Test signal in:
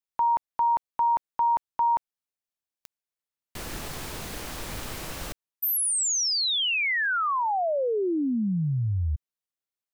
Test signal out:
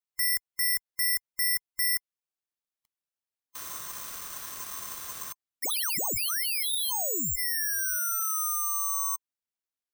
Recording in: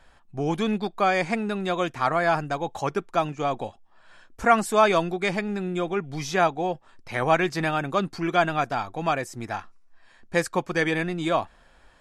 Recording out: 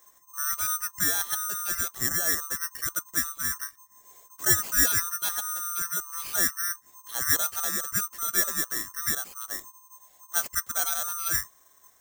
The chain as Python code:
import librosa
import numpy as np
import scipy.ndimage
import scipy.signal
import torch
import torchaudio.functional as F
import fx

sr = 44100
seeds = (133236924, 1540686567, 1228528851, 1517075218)

y = fx.band_swap(x, sr, width_hz=1000)
y = (np.kron(y[::6], np.eye(6)[0]) * 6)[:len(y)]
y = y * librosa.db_to_amplitude(-11.5)